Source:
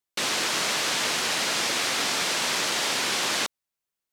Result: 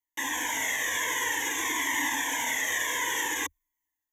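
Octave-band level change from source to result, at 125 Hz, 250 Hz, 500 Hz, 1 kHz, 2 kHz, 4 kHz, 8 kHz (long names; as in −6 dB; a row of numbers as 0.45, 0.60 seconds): below −10 dB, −3.0 dB, −8.5 dB, −2.5 dB, 0.0 dB, −9.5 dB, −2.5 dB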